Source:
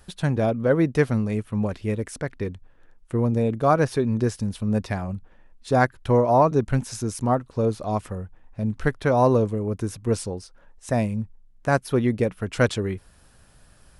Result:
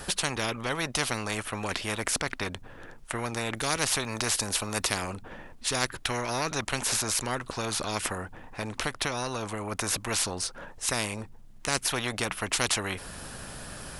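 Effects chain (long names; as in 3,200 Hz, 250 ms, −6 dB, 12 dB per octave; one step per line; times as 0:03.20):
0:03.56–0:05.10: high-shelf EQ 5,900 Hz +7.5 dB
0:08.77–0:09.72: downward compressor, threshold −22 dBFS, peak gain reduction 8.5 dB
every bin compressed towards the loudest bin 4 to 1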